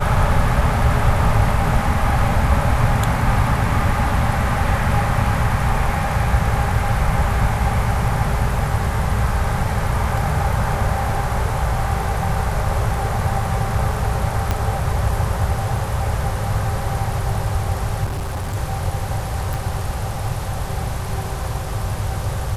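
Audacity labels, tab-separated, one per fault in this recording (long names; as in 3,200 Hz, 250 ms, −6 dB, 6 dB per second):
14.510000	14.510000	click −6 dBFS
18.040000	18.560000	clipping −21 dBFS
19.540000	19.540000	click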